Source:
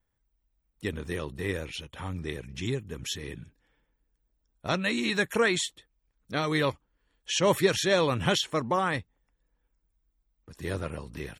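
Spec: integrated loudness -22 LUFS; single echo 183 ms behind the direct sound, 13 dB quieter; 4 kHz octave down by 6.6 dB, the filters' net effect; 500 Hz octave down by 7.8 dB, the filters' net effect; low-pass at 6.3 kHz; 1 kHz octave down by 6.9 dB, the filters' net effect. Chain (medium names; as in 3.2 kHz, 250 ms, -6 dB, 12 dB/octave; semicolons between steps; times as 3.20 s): low-pass 6.3 kHz; peaking EQ 500 Hz -8.5 dB; peaking EQ 1 kHz -6 dB; peaking EQ 4 kHz -7.5 dB; delay 183 ms -13 dB; trim +11.5 dB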